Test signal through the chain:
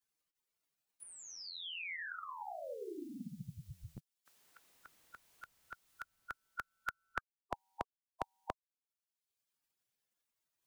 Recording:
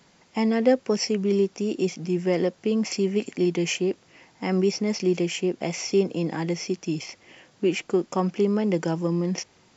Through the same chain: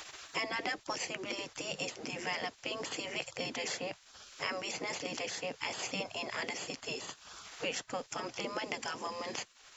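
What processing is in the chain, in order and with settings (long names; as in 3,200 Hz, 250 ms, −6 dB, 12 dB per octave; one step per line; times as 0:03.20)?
gate on every frequency bin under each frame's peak −15 dB weak
multiband upward and downward compressor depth 70%
level +1.5 dB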